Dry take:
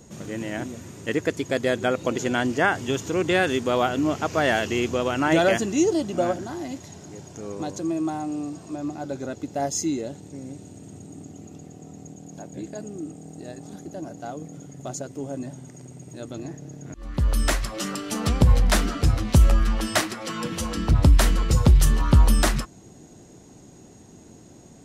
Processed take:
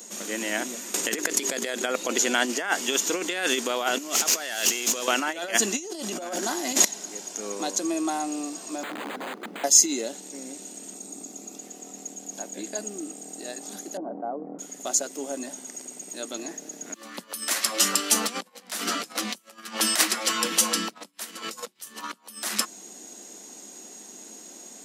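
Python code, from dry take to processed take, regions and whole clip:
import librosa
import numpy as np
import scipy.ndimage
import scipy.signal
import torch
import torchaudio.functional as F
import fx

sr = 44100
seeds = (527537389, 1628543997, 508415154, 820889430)

y = fx.chain(x, sr, fx.hum_notches(base_hz=50, count=8),
    fx.env_flatten(amount_pct=100), at=(0.94, 1.82))
y = fx.chain(y, sr, fx.high_shelf(hz=3400.0, db=9.5),
    fx.over_compress(threshold_db=-31.0, ratio=-1.0),
    fx.tube_stage(drive_db=22.0, bias=0.5), at=(3.98, 5.08))
y = fx.chain(y, sr, fx.high_shelf(hz=11000.0, db=3.0),
    fx.env_flatten(amount_pct=70), at=(5.78, 6.85))
y = fx.chain(y, sr, fx.overflow_wrap(gain_db=30.5),
    fx.tilt_eq(slope=-3.0),
    fx.resample_linear(factor=8), at=(8.83, 9.64))
y = fx.chain(y, sr, fx.peak_eq(hz=1800.0, db=-5.5, octaves=0.44),
    fx.notch(hz=3000.0, q=6.3), at=(10.94, 11.58))
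y = fx.chain(y, sr, fx.lowpass(hz=1000.0, slope=24),
    fx.env_flatten(amount_pct=70), at=(13.97, 14.59))
y = fx.over_compress(y, sr, threshold_db=-24.0, ratio=-0.5)
y = scipy.signal.sosfilt(scipy.signal.ellip(4, 1.0, 50, 200.0, 'highpass', fs=sr, output='sos'), y)
y = fx.tilt_eq(y, sr, slope=3.5)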